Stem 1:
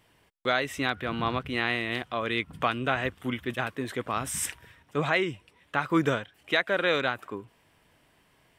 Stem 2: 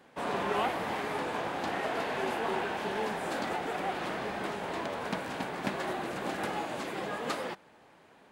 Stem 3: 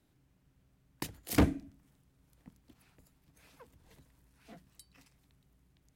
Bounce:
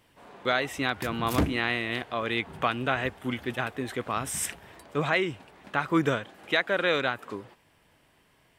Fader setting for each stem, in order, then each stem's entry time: 0.0, −17.0, 0.0 decibels; 0.00, 0.00, 0.00 seconds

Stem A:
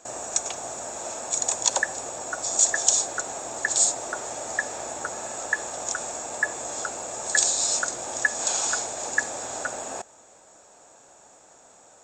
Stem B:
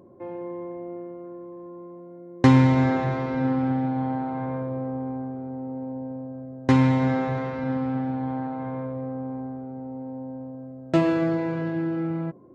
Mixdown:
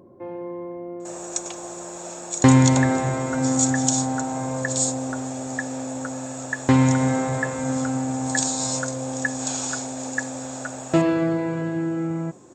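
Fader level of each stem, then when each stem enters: −3.0, +1.5 decibels; 1.00, 0.00 seconds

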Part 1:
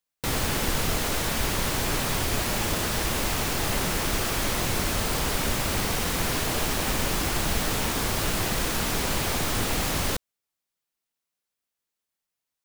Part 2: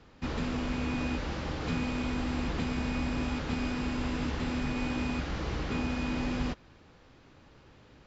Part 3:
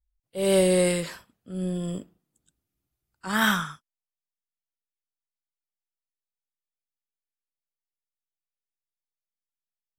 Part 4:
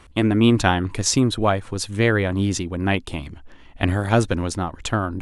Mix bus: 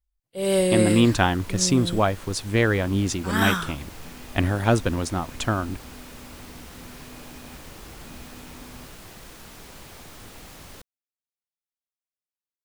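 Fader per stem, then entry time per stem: −17.5, −14.0, −0.5, −2.0 decibels; 0.65, 2.35, 0.00, 0.55 seconds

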